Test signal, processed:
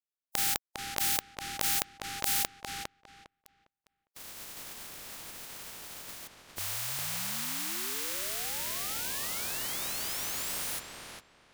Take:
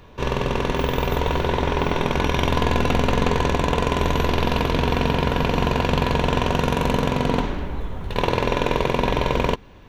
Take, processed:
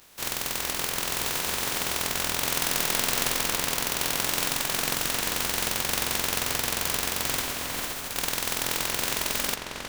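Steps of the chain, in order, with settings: spectral contrast reduction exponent 0.12; on a send: filtered feedback delay 405 ms, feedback 21%, low-pass 3.3 kHz, level -3.5 dB; on the sum: trim -8 dB

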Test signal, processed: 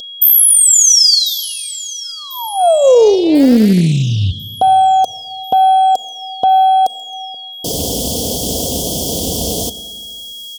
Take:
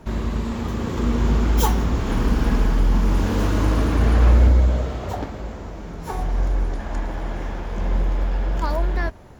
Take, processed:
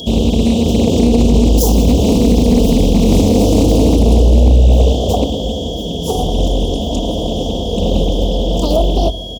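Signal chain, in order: high-pass 64 Hz 24 dB/octave; peaking EQ 210 Hz -2 dB 0.59 oct; on a send: feedback echo behind a high-pass 1044 ms, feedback 58%, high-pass 5.1 kHz, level -19 dB; on the sum: whistle 3.3 kHz -26 dBFS; Chebyshev band-stop 620–4900 Hz, order 3; peaking EQ 99 Hz -2.5 dB 2.9 oct; comb 4.2 ms, depth 45%; Schroeder reverb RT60 2 s, combs from 29 ms, DRR 14.5 dB; loudness maximiser +18 dB; loudspeaker Doppler distortion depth 0.45 ms; trim -1 dB

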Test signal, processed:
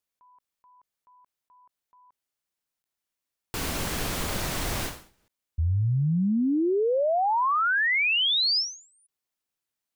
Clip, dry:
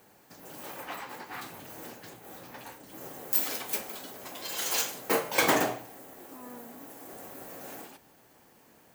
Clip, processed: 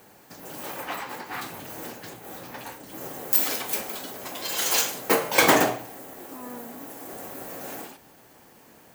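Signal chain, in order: endings held to a fixed fall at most 130 dB/s; trim +6.5 dB

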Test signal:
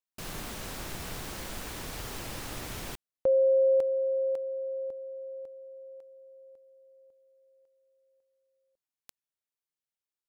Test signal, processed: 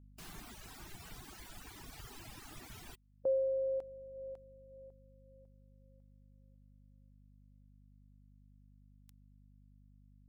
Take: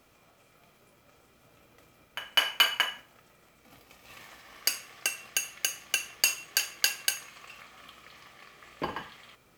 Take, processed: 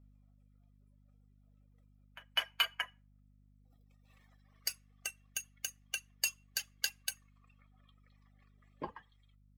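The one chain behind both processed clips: expander on every frequency bin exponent 1.5; hum 50 Hz, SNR 17 dB; reverb removal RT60 1.3 s; trim -7 dB

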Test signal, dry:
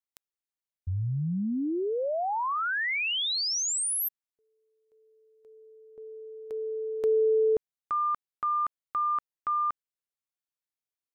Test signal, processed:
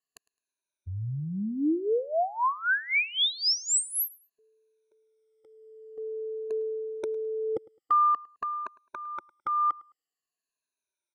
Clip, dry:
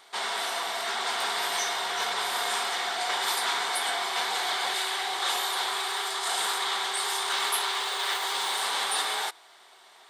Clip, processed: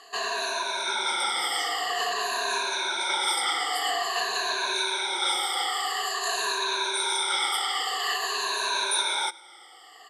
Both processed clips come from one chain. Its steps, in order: drifting ripple filter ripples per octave 1.5, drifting -0.49 Hz, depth 23 dB; low-pass 11 kHz 24 dB/octave; peaking EQ 350 Hz +6 dB 0.54 oct; in parallel at -2 dB: compression, threshold -31 dBFS; on the sum: bass shelf 140 Hz -10.5 dB; on a send: feedback delay 106 ms, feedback 23%, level -23 dB; on the sum: trim -6 dB

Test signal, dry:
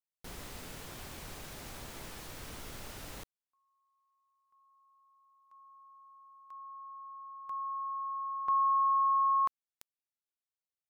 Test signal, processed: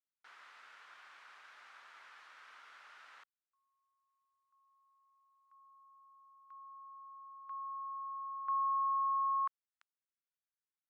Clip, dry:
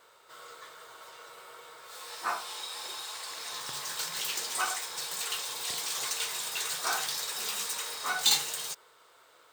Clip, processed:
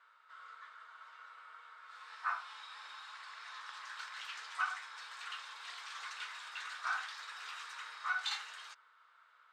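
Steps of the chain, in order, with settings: ladder band-pass 1.6 kHz, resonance 45%; trim +4.5 dB

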